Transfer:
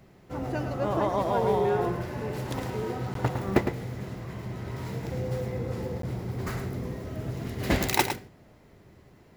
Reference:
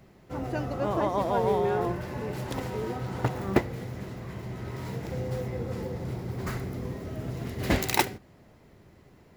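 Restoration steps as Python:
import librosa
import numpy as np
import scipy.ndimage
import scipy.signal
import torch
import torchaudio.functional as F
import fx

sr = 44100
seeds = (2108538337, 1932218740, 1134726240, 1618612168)

y = fx.fix_interpolate(x, sr, at_s=(3.14, 6.02), length_ms=13.0)
y = fx.fix_echo_inverse(y, sr, delay_ms=108, level_db=-8.5)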